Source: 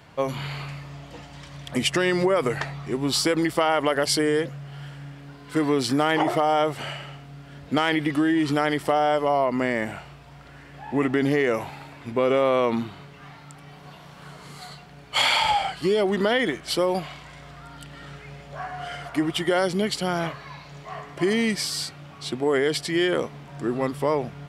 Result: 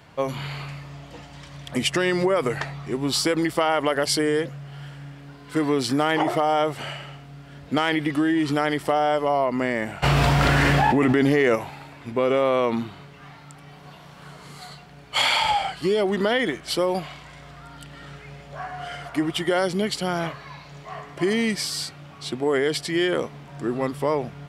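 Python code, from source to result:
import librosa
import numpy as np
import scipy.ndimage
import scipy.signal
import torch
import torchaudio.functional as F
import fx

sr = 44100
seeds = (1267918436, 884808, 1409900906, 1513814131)

y = fx.env_flatten(x, sr, amount_pct=100, at=(10.02, 11.54), fade=0.02)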